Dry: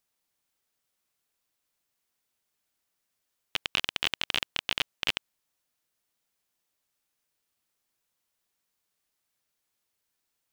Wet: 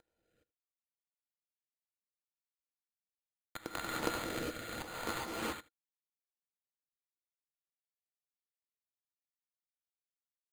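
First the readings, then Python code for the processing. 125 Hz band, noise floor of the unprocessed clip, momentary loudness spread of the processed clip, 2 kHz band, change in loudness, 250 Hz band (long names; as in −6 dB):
+1.5 dB, −81 dBFS, 10 LU, −9.0 dB, −9.0 dB, +7.0 dB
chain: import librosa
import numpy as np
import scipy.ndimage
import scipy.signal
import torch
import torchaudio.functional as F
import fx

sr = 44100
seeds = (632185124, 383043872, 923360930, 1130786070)

p1 = fx.cvsd(x, sr, bps=16000)
p2 = fx.low_shelf(p1, sr, hz=100.0, db=-5.0)
p3 = fx.notch(p2, sr, hz=1600.0, q=17.0)
p4 = fx.small_body(p3, sr, hz=(330.0, 470.0, 1400.0), ring_ms=45, db=11)
p5 = p4 + fx.echo_single(p4, sr, ms=79, db=-19.5, dry=0)
p6 = fx.rev_gated(p5, sr, seeds[0], gate_ms=440, shape='rising', drr_db=-5.0)
p7 = np.repeat(scipy.signal.resample_poly(p6, 1, 8), 8)[:len(p6)]
p8 = fx.rotary(p7, sr, hz=0.7)
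y = p8 * librosa.db_to_amplitude(16.5)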